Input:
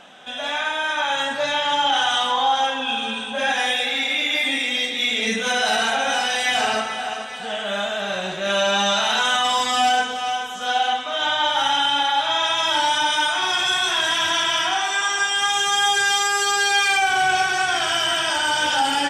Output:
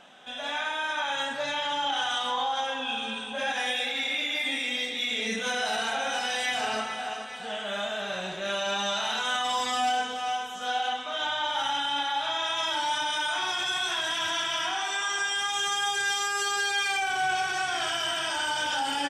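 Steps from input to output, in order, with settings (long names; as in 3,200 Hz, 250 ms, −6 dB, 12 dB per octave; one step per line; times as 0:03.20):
brickwall limiter −13 dBFS, peak gain reduction 3.5 dB
double-tracking delay 28 ms −12 dB
level −7 dB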